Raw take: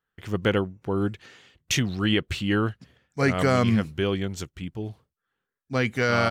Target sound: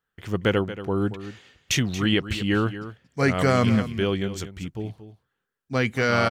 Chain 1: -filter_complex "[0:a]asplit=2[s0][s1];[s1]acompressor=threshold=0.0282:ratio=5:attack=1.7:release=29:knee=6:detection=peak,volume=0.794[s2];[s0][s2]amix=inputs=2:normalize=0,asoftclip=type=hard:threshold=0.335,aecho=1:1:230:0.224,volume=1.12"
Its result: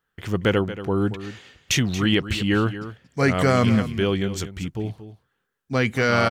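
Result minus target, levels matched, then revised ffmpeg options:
compression: peak gain reduction +14.5 dB
-af "asoftclip=type=hard:threshold=0.335,aecho=1:1:230:0.224,volume=1.12"

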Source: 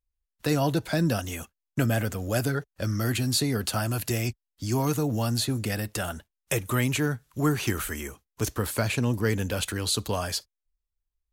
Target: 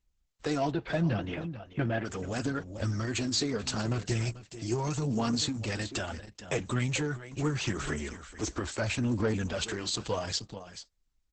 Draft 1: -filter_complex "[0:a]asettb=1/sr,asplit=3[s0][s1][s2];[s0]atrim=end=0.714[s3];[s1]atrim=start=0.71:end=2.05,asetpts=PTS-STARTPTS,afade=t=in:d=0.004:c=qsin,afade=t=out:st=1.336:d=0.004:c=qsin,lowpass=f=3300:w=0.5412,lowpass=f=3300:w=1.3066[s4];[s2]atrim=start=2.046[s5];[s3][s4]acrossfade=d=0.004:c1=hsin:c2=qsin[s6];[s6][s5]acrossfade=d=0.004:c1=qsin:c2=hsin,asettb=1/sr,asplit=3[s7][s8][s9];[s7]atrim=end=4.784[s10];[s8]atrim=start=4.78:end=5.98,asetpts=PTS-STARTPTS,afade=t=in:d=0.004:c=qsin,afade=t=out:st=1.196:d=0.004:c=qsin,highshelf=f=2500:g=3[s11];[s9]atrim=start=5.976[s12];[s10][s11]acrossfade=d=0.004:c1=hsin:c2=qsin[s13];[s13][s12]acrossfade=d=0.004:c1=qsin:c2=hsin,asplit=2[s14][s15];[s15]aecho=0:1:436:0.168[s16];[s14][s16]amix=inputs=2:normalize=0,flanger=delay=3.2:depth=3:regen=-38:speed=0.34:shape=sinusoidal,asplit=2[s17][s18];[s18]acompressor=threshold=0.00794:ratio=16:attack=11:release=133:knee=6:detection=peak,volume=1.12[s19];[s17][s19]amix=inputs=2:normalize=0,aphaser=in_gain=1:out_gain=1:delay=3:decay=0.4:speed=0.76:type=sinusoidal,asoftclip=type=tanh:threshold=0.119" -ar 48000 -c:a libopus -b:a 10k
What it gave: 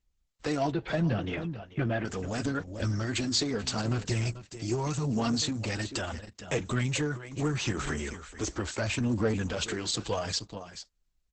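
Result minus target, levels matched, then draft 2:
compression: peak gain reduction -7.5 dB
-filter_complex "[0:a]asettb=1/sr,asplit=3[s0][s1][s2];[s0]atrim=end=0.714[s3];[s1]atrim=start=0.71:end=2.05,asetpts=PTS-STARTPTS,afade=t=in:d=0.004:c=qsin,afade=t=out:st=1.336:d=0.004:c=qsin,lowpass=f=3300:w=0.5412,lowpass=f=3300:w=1.3066[s4];[s2]atrim=start=2.046[s5];[s3][s4]acrossfade=d=0.004:c1=hsin:c2=qsin[s6];[s6][s5]acrossfade=d=0.004:c1=qsin:c2=hsin,asettb=1/sr,asplit=3[s7][s8][s9];[s7]atrim=end=4.784[s10];[s8]atrim=start=4.78:end=5.98,asetpts=PTS-STARTPTS,afade=t=in:d=0.004:c=qsin,afade=t=out:st=1.196:d=0.004:c=qsin,highshelf=f=2500:g=3[s11];[s9]atrim=start=5.976[s12];[s10][s11]acrossfade=d=0.004:c1=hsin:c2=qsin[s13];[s13][s12]acrossfade=d=0.004:c1=qsin:c2=hsin,asplit=2[s14][s15];[s15]aecho=0:1:436:0.168[s16];[s14][s16]amix=inputs=2:normalize=0,flanger=delay=3.2:depth=3:regen=-38:speed=0.34:shape=sinusoidal,asplit=2[s17][s18];[s18]acompressor=threshold=0.00316:ratio=16:attack=11:release=133:knee=6:detection=peak,volume=1.12[s19];[s17][s19]amix=inputs=2:normalize=0,aphaser=in_gain=1:out_gain=1:delay=3:decay=0.4:speed=0.76:type=sinusoidal,asoftclip=type=tanh:threshold=0.119" -ar 48000 -c:a libopus -b:a 10k

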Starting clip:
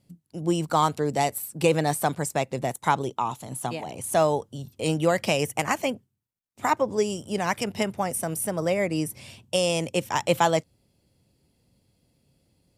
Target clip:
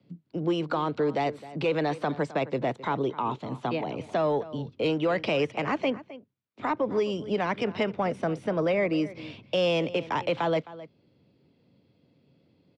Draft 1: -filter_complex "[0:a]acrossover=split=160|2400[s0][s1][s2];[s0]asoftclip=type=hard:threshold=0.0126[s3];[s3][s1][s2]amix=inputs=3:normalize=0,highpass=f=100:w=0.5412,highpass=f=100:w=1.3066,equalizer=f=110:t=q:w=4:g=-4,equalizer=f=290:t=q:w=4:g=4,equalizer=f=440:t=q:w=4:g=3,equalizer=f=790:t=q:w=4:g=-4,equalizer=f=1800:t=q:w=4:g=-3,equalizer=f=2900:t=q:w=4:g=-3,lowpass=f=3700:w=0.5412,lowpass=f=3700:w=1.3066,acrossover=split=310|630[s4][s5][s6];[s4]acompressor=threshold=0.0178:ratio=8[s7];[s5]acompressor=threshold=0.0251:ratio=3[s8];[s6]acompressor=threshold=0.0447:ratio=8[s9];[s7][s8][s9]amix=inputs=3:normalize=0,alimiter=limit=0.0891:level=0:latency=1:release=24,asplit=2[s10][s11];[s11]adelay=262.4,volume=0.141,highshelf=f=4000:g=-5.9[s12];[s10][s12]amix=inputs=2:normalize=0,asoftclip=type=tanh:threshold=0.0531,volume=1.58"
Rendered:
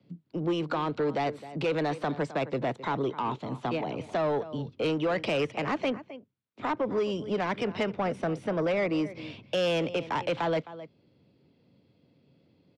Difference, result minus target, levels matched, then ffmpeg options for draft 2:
saturation: distortion +13 dB
-filter_complex "[0:a]acrossover=split=160|2400[s0][s1][s2];[s0]asoftclip=type=hard:threshold=0.0126[s3];[s3][s1][s2]amix=inputs=3:normalize=0,highpass=f=100:w=0.5412,highpass=f=100:w=1.3066,equalizer=f=110:t=q:w=4:g=-4,equalizer=f=290:t=q:w=4:g=4,equalizer=f=440:t=q:w=4:g=3,equalizer=f=790:t=q:w=4:g=-4,equalizer=f=1800:t=q:w=4:g=-3,equalizer=f=2900:t=q:w=4:g=-3,lowpass=f=3700:w=0.5412,lowpass=f=3700:w=1.3066,acrossover=split=310|630[s4][s5][s6];[s4]acompressor=threshold=0.0178:ratio=8[s7];[s5]acompressor=threshold=0.0251:ratio=3[s8];[s6]acompressor=threshold=0.0447:ratio=8[s9];[s7][s8][s9]amix=inputs=3:normalize=0,alimiter=limit=0.0891:level=0:latency=1:release=24,asplit=2[s10][s11];[s11]adelay=262.4,volume=0.141,highshelf=f=4000:g=-5.9[s12];[s10][s12]amix=inputs=2:normalize=0,asoftclip=type=tanh:threshold=0.133,volume=1.58"

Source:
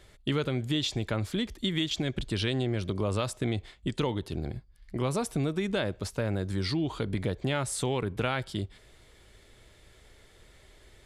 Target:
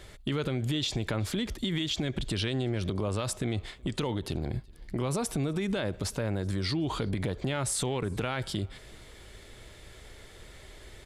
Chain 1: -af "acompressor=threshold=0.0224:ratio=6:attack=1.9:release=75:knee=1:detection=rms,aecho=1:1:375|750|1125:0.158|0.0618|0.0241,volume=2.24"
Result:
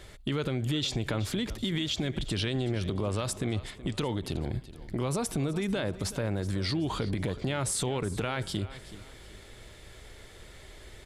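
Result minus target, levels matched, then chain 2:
echo-to-direct +12 dB
-af "acompressor=threshold=0.0224:ratio=6:attack=1.9:release=75:knee=1:detection=rms,aecho=1:1:375|750:0.0398|0.0155,volume=2.24"

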